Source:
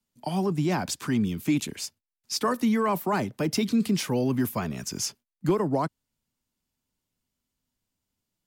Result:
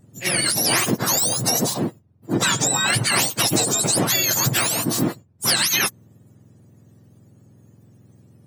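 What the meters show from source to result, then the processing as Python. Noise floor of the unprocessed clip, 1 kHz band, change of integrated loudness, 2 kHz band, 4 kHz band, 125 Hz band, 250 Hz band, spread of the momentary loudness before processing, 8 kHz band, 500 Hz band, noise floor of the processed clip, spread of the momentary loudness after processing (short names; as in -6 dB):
under -85 dBFS, +4.0 dB, +8.5 dB, +13.5 dB, +15.0 dB, +4.0 dB, -0.5 dB, 8 LU, +17.5 dB, +1.5 dB, -55 dBFS, 6 LU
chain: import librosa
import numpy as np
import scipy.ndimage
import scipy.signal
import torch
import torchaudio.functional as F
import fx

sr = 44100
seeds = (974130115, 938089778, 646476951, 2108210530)

y = fx.octave_mirror(x, sr, pivot_hz=1300.0)
y = fx.spectral_comp(y, sr, ratio=2.0)
y = y * 10.0 ** (6.5 / 20.0)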